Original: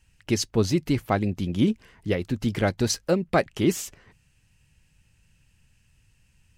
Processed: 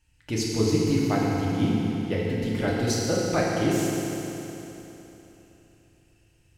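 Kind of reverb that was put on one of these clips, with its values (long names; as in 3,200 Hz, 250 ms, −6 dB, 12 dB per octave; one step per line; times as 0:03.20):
feedback delay network reverb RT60 3.4 s, high-frequency decay 0.95×, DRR −5 dB
level −6.5 dB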